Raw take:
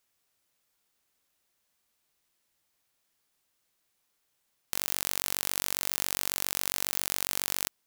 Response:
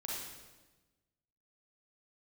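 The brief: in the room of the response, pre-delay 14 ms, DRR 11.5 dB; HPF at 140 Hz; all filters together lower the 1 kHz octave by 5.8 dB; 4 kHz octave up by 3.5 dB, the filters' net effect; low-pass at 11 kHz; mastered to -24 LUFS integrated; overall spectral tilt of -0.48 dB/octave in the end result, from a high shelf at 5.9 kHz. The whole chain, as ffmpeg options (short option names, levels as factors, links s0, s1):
-filter_complex "[0:a]highpass=140,lowpass=11000,equalizer=f=1000:t=o:g=-8,equalizer=f=4000:t=o:g=6,highshelf=f=5900:g=-3,asplit=2[s0][s1];[1:a]atrim=start_sample=2205,adelay=14[s2];[s1][s2]afir=irnorm=-1:irlink=0,volume=0.237[s3];[s0][s3]amix=inputs=2:normalize=0,volume=2.37"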